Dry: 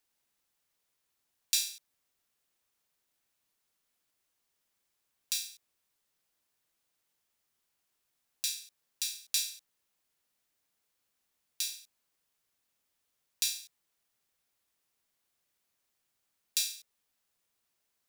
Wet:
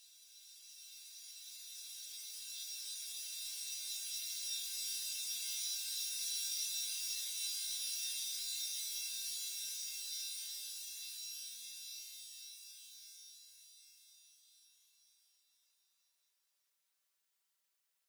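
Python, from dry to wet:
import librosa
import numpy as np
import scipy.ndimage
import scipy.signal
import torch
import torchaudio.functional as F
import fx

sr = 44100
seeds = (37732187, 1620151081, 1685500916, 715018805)

y = fx.highpass(x, sr, hz=1100.0, slope=6)
y = y + 0.79 * np.pad(y, (int(5.2 * sr / 1000.0), 0))[:len(y)]
y = np.clip(y, -10.0 ** (-21.0 / 20.0), 10.0 ** (-21.0 / 20.0))
y = fx.paulstretch(y, sr, seeds[0], factor=16.0, window_s=1.0, from_s=4.93)
y = F.gain(torch.from_numpy(y), -4.5).numpy()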